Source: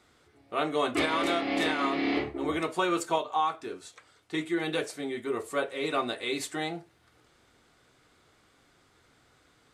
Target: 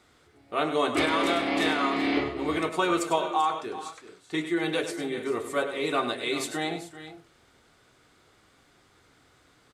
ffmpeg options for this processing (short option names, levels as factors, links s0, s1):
-af "aecho=1:1:100|387|425:0.316|0.188|0.141,volume=1.26"